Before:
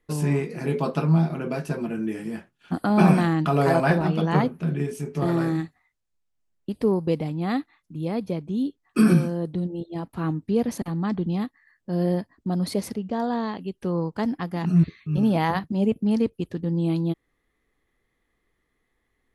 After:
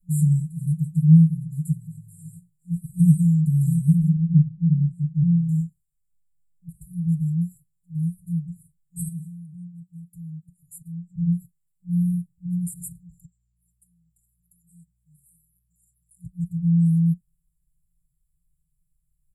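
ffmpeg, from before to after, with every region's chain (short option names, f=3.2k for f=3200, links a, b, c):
-filter_complex "[0:a]asettb=1/sr,asplit=3[a][b][c];[a]atrim=end=4.134[d];[b]atrim=start=4.13:end=5.49,asetpts=PTS-STARTPTS,afade=t=in:d=0.004:c=qsin,afade=t=out:st=1.356:d=0.004:c=qsin,lowpass=1.8k,asplit=2[e][f];[f]adelay=34,volume=-6dB[g];[e][g]amix=inputs=2:normalize=0,atrim=end_sample=59976[h];[c]atrim=start=5.486[i];[d][h]acrossfade=d=0.004:c1=hsin:c2=qsin[j];[j][i]acrossfade=d=0.004:c1=qsin:c2=hsin,asettb=1/sr,asplit=3[k][l][m];[k]atrim=end=9.084[n];[l]atrim=start=9.08:end=11.16,asetpts=PTS-STARTPTS,afade=t=in:d=0.004:c=qsin,afade=t=out:st=2.076:d=0.004:c=qsin,highpass=f=280:p=1,acompressor=threshold=-38dB:ratio=3:attack=3.2:release=140:knee=1:detection=peak[o];[m]atrim=start=11.156[p];[n][o]acrossfade=d=0.004:c1=hsin:c2=qsin[q];[q][p]acrossfade=d=0.004:c1=qsin:c2=hsin,asettb=1/sr,asplit=3[r][s][t];[r]atrim=end=13.254[u];[s]atrim=start=13.25:end=16.25,asetpts=PTS-STARTPTS,afade=t=in:d=0.004:c=qsin,afade=t=out:st=2.996:d=0.004:c=qsin,highpass=1.4k,acompressor=threshold=-49dB:ratio=3:attack=3.2:release=140:knee=1:detection=peak,aeval=exprs='val(0)+0.000224*(sin(2*PI*60*n/s)+sin(2*PI*2*60*n/s)/2+sin(2*PI*3*60*n/s)/3+sin(2*PI*4*60*n/s)/4+sin(2*PI*5*60*n/s)/5)':c=same[v];[t]atrim=start=16.246[w];[u][v]acrossfade=d=0.004:c1=hsin:c2=qsin[x];[x][w]acrossfade=d=0.004:c1=qsin:c2=hsin,afftfilt=real='re*(1-between(b*sr/4096,180,7000))':imag='im*(1-between(b*sr/4096,180,7000))':win_size=4096:overlap=0.75,aecho=1:1:5.6:0.65,volume=3.5dB"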